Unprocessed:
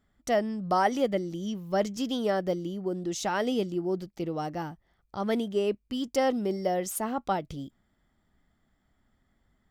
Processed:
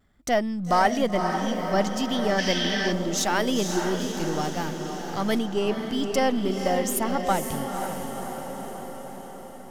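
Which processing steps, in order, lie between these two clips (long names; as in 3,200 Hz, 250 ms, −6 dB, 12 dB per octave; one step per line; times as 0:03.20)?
gain on one half-wave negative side −3 dB
pitch vibrato 0.89 Hz 30 cents
feedback delay with all-pass diffusion 507 ms, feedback 61%, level −6 dB
dynamic equaliser 440 Hz, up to −5 dB, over −41 dBFS, Q 0.97
0:02.39–0:02.92: gain on a spectral selection 1,500–6,200 Hz +12 dB
0:03.17–0:05.39: high-shelf EQ 5,400 Hz +8 dB
level +7 dB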